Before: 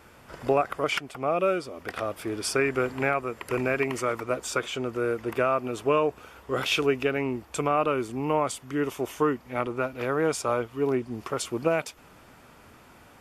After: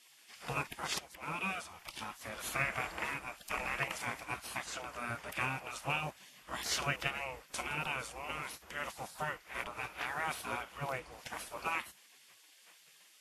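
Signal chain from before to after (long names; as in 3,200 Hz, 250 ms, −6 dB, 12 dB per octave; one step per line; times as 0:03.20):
one scale factor per block 7 bits
gate on every frequency bin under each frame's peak −15 dB weak
Ogg Vorbis 32 kbit/s 32,000 Hz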